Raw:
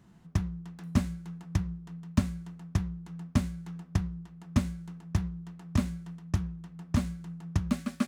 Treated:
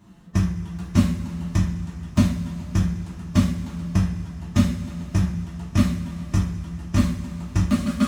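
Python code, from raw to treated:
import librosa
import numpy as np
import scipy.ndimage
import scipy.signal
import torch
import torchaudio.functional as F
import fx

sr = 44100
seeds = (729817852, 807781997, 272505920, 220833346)

y = fx.spec_quant(x, sr, step_db=15)
y = fx.rev_double_slope(y, sr, seeds[0], early_s=0.39, late_s=3.8, knee_db=-18, drr_db=-5.0)
y = F.gain(torch.from_numpy(y), 3.0).numpy()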